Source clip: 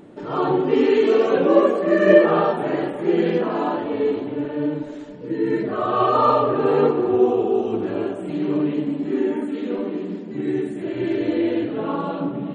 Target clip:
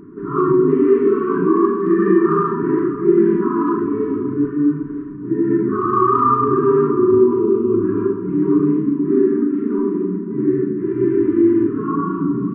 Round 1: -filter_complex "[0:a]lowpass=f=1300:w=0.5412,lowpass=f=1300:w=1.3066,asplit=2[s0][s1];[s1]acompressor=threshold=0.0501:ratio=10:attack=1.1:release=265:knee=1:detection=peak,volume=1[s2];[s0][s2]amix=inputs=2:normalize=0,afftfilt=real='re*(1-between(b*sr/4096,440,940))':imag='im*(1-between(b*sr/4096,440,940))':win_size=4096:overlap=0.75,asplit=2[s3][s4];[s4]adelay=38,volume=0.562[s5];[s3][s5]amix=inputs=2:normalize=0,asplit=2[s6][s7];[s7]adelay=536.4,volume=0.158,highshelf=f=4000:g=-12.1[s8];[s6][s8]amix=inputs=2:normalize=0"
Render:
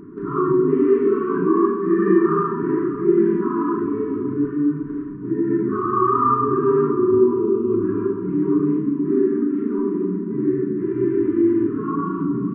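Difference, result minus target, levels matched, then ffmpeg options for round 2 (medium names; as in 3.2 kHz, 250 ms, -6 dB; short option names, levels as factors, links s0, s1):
compression: peak gain reduction +10.5 dB
-filter_complex "[0:a]lowpass=f=1300:w=0.5412,lowpass=f=1300:w=1.3066,asplit=2[s0][s1];[s1]acompressor=threshold=0.188:ratio=10:attack=1.1:release=265:knee=1:detection=peak,volume=1[s2];[s0][s2]amix=inputs=2:normalize=0,afftfilt=real='re*(1-between(b*sr/4096,440,940))':imag='im*(1-between(b*sr/4096,440,940))':win_size=4096:overlap=0.75,asplit=2[s3][s4];[s4]adelay=38,volume=0.562[s5];[s3][s5]amix=inputs=2:normalize=0,asplit=2[s6][s7];[s7]adelay=536.4,volume=0.158,highshelf=f=4000:g=-12.1[s8];[s6][s8]amix=inputs=2:normalize=0"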